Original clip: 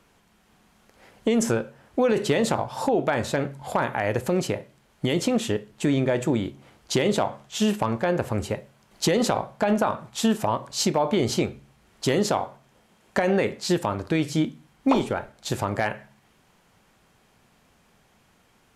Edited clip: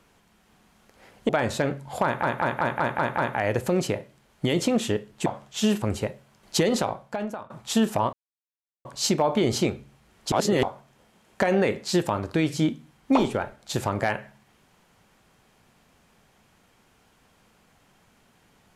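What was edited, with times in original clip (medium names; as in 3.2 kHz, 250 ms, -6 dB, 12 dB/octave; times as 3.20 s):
1.29–3.03 s: delete
3.78 s: stutter 0.19 s, 7 plays
5.86–7.24 s: delete
7.80–8.30 s: delete
9.05–9.98 s: fade out, to -20.5 dB
10.61 s: insert silence 0.72 s
12.08–12.39 s: reverse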